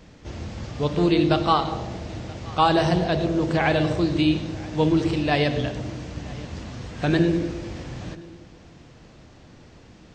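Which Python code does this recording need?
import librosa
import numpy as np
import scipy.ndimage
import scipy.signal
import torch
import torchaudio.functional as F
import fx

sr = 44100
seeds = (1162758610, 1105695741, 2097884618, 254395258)

y = fx.fix_echo_inverse(x, sr, delay_ms=975, level_db=-22.0)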